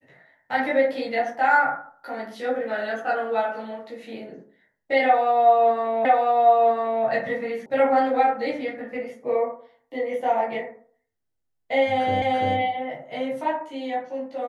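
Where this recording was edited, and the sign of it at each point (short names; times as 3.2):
6.05 repeat of the last 1 s
7.66 sound cut off
12.22 repeat of the last 0.34 s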